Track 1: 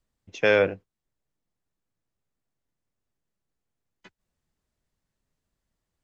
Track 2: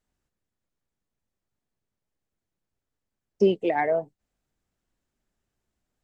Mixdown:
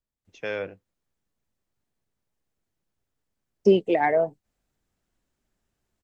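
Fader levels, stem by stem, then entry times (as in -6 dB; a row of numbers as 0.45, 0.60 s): -11.0, +2.5 dB; 0.00, 0.25 s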